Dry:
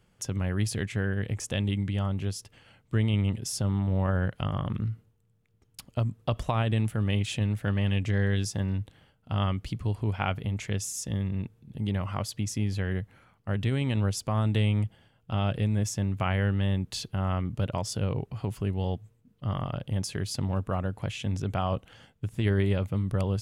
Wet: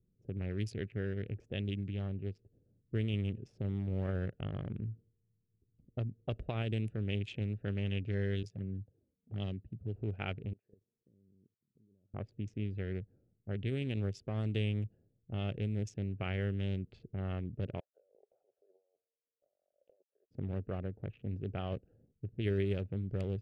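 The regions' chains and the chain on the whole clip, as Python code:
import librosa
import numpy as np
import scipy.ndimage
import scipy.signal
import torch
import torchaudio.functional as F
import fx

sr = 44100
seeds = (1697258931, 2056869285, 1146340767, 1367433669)

y = fx.chain(x, sr, fx.highpass(hz=84.0, slope=12),
    fx.env_flanger(rest_ms=5.2, full_db=-23.5), at=(8.43, 9.96))
y = fx.chain(y, sr, fx.highpass(hz=1000.0, slope=6),
    fx.level_steps(step_db=19), at=(10.53, 12.14))
y = fx.chain(y, sr, fx.ellip_highpass(hz=580.0, order=4, stop_db=60),
    fx.over_compress(threshold_db=-52.0, ratio=-1.0), at=(17.8, 20.31))
y = fx.wiener(y, sr, points=41)
y = fx.graphic_eq_15(y, sr, hz=(400, 1000, 2500, 10000), db=(7, -11, 5, -3))
y = fx.env_lowpass(y, sr, base_hz=310.0, full_db=-21.0)
y = F.gain(torch.from_numpy(y), -9.0).numpy()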